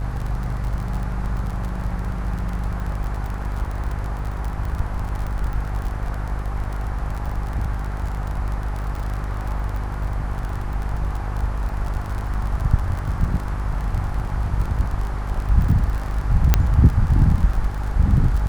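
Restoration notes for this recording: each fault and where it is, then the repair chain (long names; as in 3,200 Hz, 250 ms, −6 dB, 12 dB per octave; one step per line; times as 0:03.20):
mains buzz 50 Hz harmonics 31 −26 dBFS
surface crackle 37 per second −26 dBFS
0:16.54: click −1 dBFS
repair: click removal
hum removal 50 Hz, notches 31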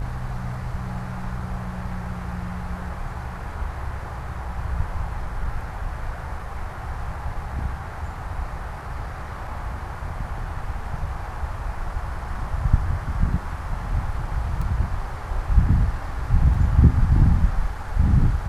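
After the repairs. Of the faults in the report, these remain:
0:16.54: click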